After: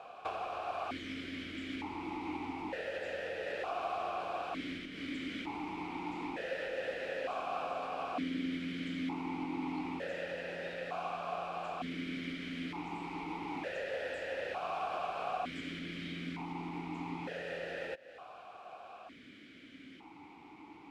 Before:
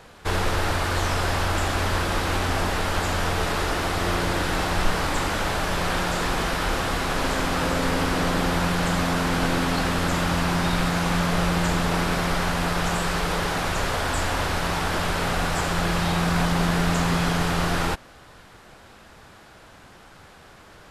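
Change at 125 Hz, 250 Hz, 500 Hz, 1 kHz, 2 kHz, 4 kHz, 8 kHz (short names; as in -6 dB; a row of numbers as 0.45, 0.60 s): -24.5, -13.5, -12.0, -14.0, -16.5, -18.5, -30.5 dB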